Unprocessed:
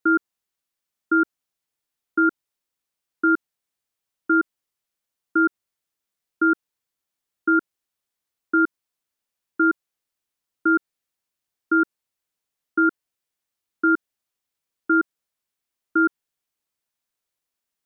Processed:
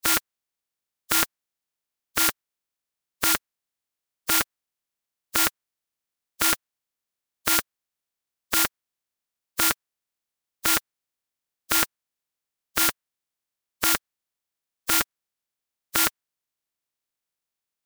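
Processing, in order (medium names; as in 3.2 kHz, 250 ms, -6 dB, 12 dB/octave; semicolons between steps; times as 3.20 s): spectral contrast reduction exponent 0.11; dynamic bell 1.5 kHz, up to +5 dB, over -38 dBFS, Q 1.1; trim -3 dB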